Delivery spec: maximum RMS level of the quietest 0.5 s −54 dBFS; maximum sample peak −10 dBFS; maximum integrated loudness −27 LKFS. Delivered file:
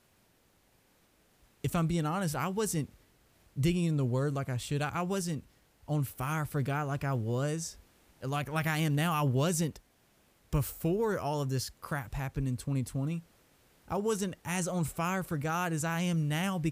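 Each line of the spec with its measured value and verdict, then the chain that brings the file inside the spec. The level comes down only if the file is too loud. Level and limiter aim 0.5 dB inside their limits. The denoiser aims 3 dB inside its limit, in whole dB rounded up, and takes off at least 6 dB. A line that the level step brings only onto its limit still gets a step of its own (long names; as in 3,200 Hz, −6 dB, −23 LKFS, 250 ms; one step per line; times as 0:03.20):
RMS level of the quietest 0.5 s −68 dBFS: in spec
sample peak −15.5 dBFS: in spec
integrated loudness −32.5 LKFS: in spec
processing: no processing needed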